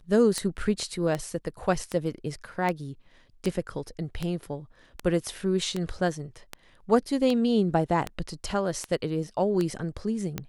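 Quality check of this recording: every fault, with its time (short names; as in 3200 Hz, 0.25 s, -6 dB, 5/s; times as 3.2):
tick 78 rpm -15 dBFS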